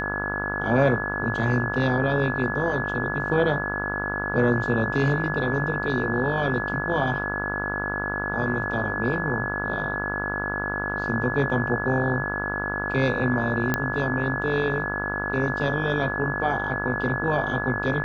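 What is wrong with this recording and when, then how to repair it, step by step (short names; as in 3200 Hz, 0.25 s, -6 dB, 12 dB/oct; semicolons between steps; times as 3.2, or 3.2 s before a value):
buzz 50 Hz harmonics 34 -31 dBFS
tone 1700 Hz -29 dBFS
13.74 pop -8 dBFS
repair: de-click; de-hum 50 Hz, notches 34; notch 1700 Hz, Q 30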